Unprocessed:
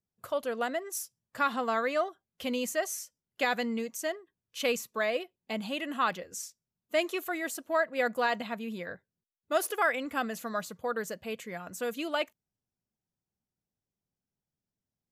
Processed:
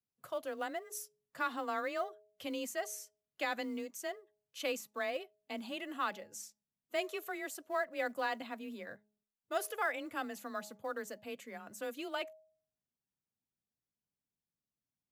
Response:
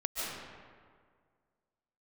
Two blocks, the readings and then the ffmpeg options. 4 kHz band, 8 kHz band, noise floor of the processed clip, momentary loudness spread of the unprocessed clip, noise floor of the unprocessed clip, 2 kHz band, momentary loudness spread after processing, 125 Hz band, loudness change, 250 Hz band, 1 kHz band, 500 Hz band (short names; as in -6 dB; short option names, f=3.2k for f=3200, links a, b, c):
-7.5 dB, -7.5 dB, under -85 dBFS, 11 LU, under -85 dBFS, -7.0 dB, 11 LU, under -10 dB, -7.5 dB, -8.0 dB, -7.0 dB, -8.0 dB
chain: -af "afreqshift=23,acrusher=bits=8:mode=log:mix=0:aa=0.000001,bandreject=f=210.4:t=h:w=4,bandreject=f=420.8:t=h:w=4,bandreject=f=631.2:t=h:w=4,bandreject=f=841.6:t=h:w=4,volume=-7.5dB"